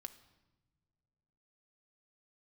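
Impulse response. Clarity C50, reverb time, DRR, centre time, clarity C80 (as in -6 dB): 14.0 dB, not exponential, 7.5 dB, 6 ms, 16.5 dB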